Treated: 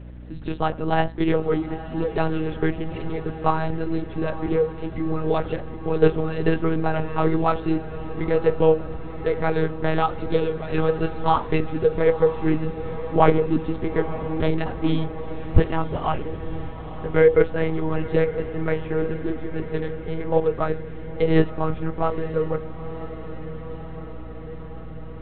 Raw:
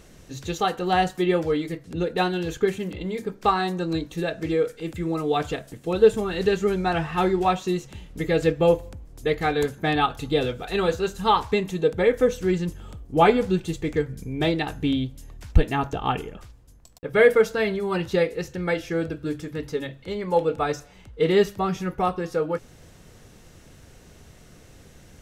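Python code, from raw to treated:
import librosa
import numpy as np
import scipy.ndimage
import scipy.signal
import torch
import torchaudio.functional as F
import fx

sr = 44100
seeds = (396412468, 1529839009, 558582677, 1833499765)

p1 = fx.lowpass(x, sr, hz=1300.0, slope=6)
p2 = fx.lpc_monotone(p1, sr, seeds[0], pitch_hz=160.0, order=8)
p3 = fx.vibrato(p2, sr, rate_hz=1.1, depth_cents=25.0)
p4 = p3 + fx.echo_diffused(p3, sr, ms=945, feedback_pct=69, wet_db=-13.5, dry=0)
p5 = fx.add_hum(p4, sr, base_hz=60, snr_db=17)
y = p5 * librosa.db_to_amplitude(2.0)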